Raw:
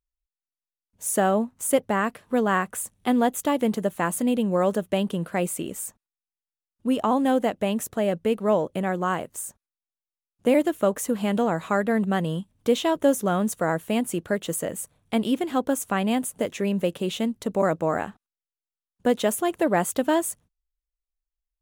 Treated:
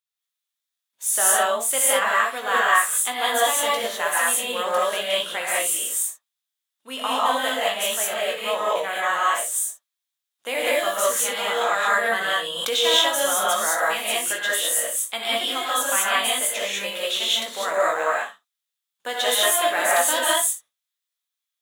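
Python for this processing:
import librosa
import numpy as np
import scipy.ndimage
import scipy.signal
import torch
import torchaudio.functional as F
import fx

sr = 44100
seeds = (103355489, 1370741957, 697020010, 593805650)

y = scipy.signal.sosfilt(scipy.signal.butter(2, 1200.0, 'highpass', fs=sr, output='sos'), x)
y = fx.peak_eq(y, sr, hz=3600.0, db=7.0, octaves=0.28)
y = fx.room_early_taps(y, sr, ms=(19, 61), db=(-6.0, -12.0))
y = fx.rev_gated(y, sr, seeds[0], gate_ms=230, shape='rising', drr_db=-6.0)
y = fx.pre_swell(y, sr, db_per_s=39.0, at=(11.61, 13.83))
y = F.gain(torch.from_numpy(y), 3.0).numpy()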